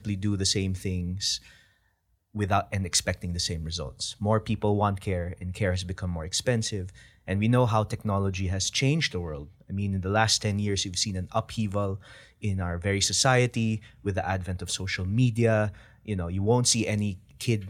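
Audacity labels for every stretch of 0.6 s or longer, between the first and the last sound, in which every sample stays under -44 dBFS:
1.550000	2.350000	silence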